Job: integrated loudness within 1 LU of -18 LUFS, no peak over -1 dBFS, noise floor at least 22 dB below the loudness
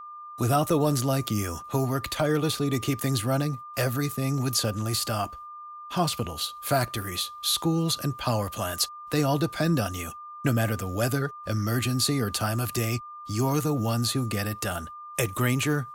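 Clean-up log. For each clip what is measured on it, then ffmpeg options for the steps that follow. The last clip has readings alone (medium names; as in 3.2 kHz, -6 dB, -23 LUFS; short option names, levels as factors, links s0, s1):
steady tone 1.2 kHz; tone level -39 dBFS; loudness -27.0 LUFS; peak level -11.5 dBFS; loudness target -18.0 LUFS
-> -af "bandreject=f=1200:w=30"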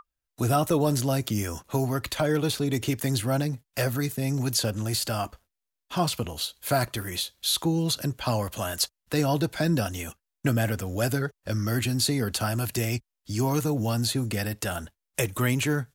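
steady tone not found; loudness -27.0 LUFS; peak level -12.0 dBFS; loudness target -18.0 LUFS
-> -af "volume=2.82"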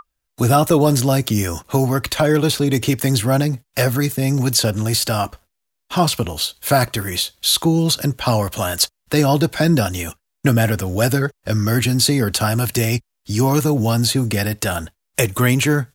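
loudness -18.0 LUFS; peak level -3.0 dBFS; noise floor -76 dBFS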